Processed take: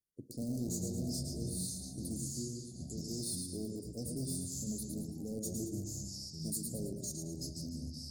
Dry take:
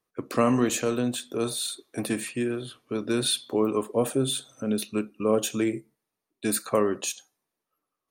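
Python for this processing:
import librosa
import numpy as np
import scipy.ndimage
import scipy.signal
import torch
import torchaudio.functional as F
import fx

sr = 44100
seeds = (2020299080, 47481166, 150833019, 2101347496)

p1 = fx.tone_stack(x, sr, knobs='6-0-2')
p2 = fx.echo_feedback(p1, sr, ms=110, feedback_pct=45, wet_db=-6.0)
p3 = (np.mod(10.0 ** (37.5 / 20.0) * p2 + 1.0, 2.0) - 1.0) / 10.0 ** (37.5 / 20.0)
p4 = p2 + (p3 * librosa.db_to_amplitude(-10.0))
p5 = fx.echo_pitch(p4, sr, ms=162, semitones=-5, count=2, db_per_echo=-3.0)
p6 = scipy.signal.sosfilt(scipy.signal.cheby1(4, 1.0, [650.0, 4500.0], 'bandstop', fs=sr, output='sos'), p5)
p7 = fx.peak_eq(p6, sr, hz=3100.0, db=-7.0, octaves=0.41)
y = p7 * librosa.db_to_amplitude(3.5)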